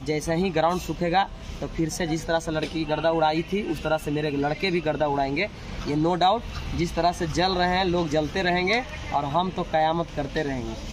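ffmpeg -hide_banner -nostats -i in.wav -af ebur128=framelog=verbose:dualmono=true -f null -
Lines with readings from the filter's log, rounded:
Integrated loudness:
  I:         -22.0 LUFS
  Threshold: -32.1 LUFS
Loudness range:
  LRA:         1.9 LU
  Threshold: -41.9 LUFS
  LRA low:   -22.8 LUFS
  LRA high:  -20.9 LUFS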